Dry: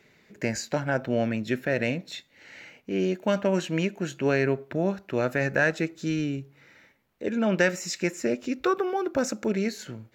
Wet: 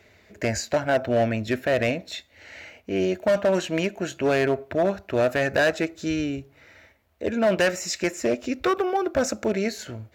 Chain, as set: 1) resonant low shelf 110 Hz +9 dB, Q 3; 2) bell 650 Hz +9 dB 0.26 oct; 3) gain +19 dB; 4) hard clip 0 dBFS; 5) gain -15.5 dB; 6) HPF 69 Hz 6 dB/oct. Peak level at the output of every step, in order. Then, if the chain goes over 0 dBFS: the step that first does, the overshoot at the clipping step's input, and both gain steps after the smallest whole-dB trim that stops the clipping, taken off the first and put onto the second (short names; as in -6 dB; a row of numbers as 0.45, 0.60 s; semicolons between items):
-9.5, -9.0, +10.0, 0.0, -15.5, -13.0 dBFS; step 3, 10.0 dB; step 3 +9 dB, step 5 -5.5 dB